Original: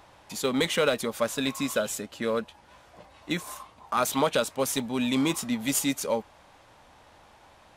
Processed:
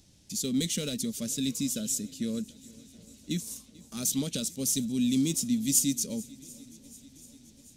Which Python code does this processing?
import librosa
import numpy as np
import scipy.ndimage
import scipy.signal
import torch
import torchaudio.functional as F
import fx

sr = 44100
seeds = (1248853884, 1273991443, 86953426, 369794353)

p1 = fx.curve_eq(x, sr, hz=(110.0, 220.0, 1000.0, 6000.0, 12000.0), db=(0, 4, -30, 6, 1))
y = p1 + fx.echo_swing(p1, sr, ms=735, ratio=1.5, feedback_pct=57, wet_db=-22.5, dry=0)